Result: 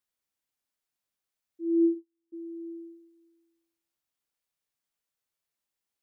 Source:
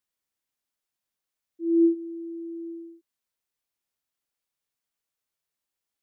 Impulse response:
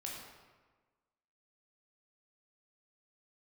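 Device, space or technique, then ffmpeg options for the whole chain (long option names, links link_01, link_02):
ducked reverb: -filter_complex "[0:a]asplit=3[link_01][link_02][link_03];[1:a]atrim=start_sample=2205[link_04];[link_02][link_04]afir=irnorm=-1:irlink=0[link_05];[link_03]apad=whole_len=265558[link_06];[link_05][link_06]sidechaincompress=threshold=-39dB:ratio=8:attack=16:release=107,volume=-7.5dB[link_07];[link_01][link_07]amix=inputs=2:normalize=0,asplit=3[link_08][link_09][link_10];[link_08]afade=type=out:start_time=1.77:duration=0.02[link_11];[link_09]agate=range=-45dB:threshold=-27dB:ratio=16:detection=peak,afade=type=in:start_time=1.77:duration=0.02,afade=type=out:start_time=2.32:duration=0.02[link_12];[link_10]afade=type=in:start_time=2.32:duration=0.02[link_13];[link_11][link_12][link_13]amix=inputs=3:normalize=0,volume=-3.5dB"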